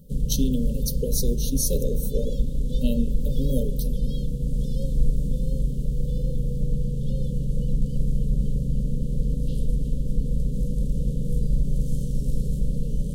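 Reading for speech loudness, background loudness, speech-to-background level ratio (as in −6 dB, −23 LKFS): −29.0 LKFS, −28.0 LKFS, −1.0 dB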